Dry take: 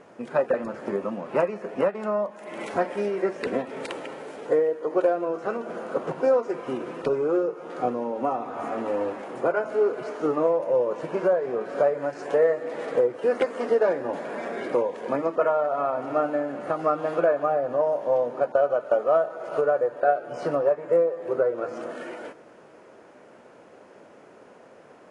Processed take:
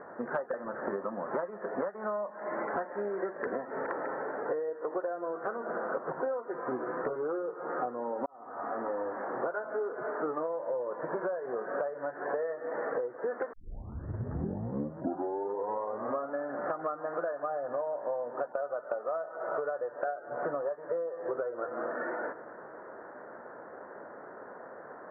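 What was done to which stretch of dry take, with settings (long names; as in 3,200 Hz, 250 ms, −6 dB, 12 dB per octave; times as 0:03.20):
0:06.70–0:07.16: double-tracking delay 16 ms −3 dB
0:08.26–0:10.10: fade in equal-power
0:13.53: tape start 2.90 s
whole clip: Butterworth low-pass 1,800 Hz 72 dB per octave; low-shelf EQ 460 Hz −12 dB; downward compressor 12 to 1, threshold −39 dBFS; level +8.5 dB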